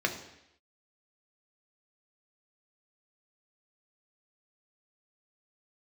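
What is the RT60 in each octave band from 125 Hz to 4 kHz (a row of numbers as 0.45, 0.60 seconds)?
0.75, 0.80, 0.80, 0.80, 0.90, 0.90 seconds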